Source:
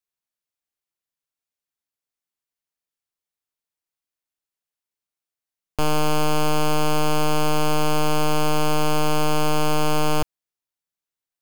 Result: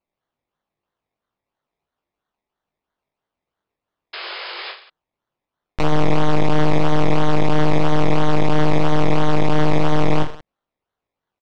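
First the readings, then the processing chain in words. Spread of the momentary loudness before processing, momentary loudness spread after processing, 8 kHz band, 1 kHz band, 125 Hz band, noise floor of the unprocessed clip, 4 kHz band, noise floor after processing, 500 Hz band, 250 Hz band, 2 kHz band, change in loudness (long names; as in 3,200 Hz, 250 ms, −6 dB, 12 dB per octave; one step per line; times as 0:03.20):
3 LU, 11 LU, −11.5 dB, +1.0 dB, +6.5 dB, below −85 dBFS, −1.5 dB, below −85 dBFS, +3.5 dB, +5.5 dB, +2.5 dB, +2.5 dB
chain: sample-and-hold swept by an LFO 24×, swing 60% 3 Hz
sound drawn into the spectrogram noise, 0:04.13–0:04.72, 340–5,200 Hz −34 dBFS
high-frequency loss of the air 160 metres
reverse bouncing-ball delay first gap 20 ms, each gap 1.3×, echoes 5
one half of a high-frequency compander encoder only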